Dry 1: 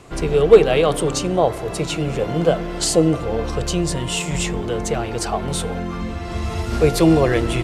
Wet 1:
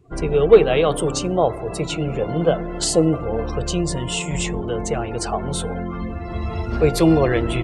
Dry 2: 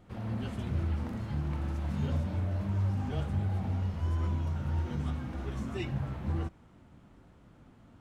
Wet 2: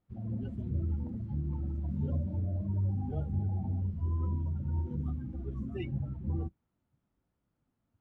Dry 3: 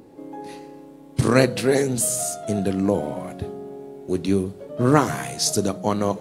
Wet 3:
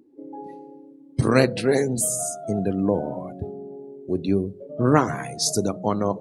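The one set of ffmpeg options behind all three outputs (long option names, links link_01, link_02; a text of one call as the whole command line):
ffmpeg -i in.wav -af "afftdn=noise_reduction=23:noise_floor=-35,volume=-1dB" out.wav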